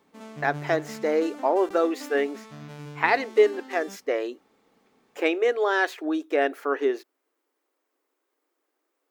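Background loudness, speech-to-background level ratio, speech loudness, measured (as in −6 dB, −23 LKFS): −41.0 LKFS, 15.5 dB, −25.5 LKFS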